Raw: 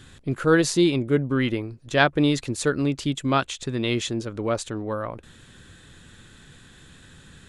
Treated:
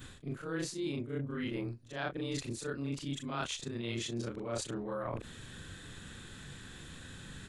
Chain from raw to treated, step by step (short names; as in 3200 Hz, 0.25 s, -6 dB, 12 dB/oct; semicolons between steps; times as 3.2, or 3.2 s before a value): short-time reversal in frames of 86 ms; reverse; compressor 10:1, threshold -38 dBFS, peak gain reduction 22 dB; reverse; gain +3.5 dB